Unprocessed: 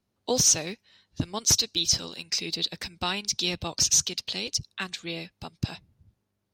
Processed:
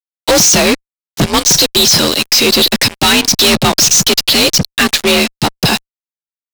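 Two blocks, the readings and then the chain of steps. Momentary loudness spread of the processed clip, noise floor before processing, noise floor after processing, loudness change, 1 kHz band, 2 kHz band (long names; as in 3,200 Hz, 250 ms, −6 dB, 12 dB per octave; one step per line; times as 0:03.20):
7 LU, −79 dBFS, below −85 dBFS, +16.0 dB, +20.5 dB, +22.0 dB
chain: frequency shifter +48 Hz
fuzz pedal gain 43 dB, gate −45 dBFS
level +6 dB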